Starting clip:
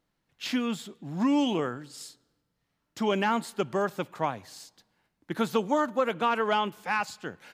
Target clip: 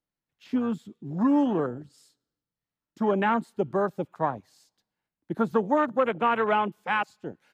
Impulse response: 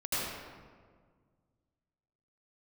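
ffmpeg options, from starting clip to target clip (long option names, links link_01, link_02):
-filter_complex "[0:a]acrossover=split=420|680|2800[link_01][link_02][link_03][link_04];[link_04]alimiter=level_in=10.5dB:limit=-24dB:level=0:latency=1:release=173,volume=-10.5dB[link_05];[link_01][link_02][link_03][link_05]amix=inputs=4:normalize=0,afwtdn=0.0251,volume=2.5dB"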